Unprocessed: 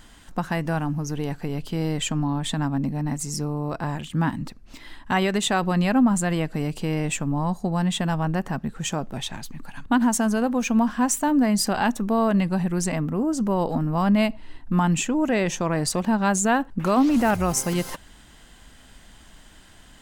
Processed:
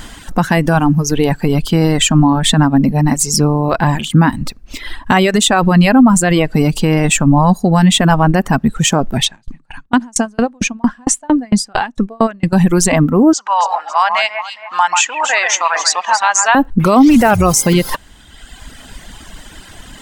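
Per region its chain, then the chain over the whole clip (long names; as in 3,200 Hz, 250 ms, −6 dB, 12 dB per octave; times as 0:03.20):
0:09.25–0:12.53: low-pass filter 9,400 Hz 24 dB per octave + mains-hum notches 50/100/150 Hz + tremolo with a ramp in dB decaying 4.4 Hz, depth 34 dB
0:13.33–0:16.55: Chebyshev band-pass filter 850–6,800 Hz, order 3 + delay that swaps between a low-pass and a high-pass 137 ms, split 2,500 Hz, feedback 61%, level −4 dB
whole clip: reverb reduction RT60 1.3 s; boost into a limiter +18.5 dB; level −1 dB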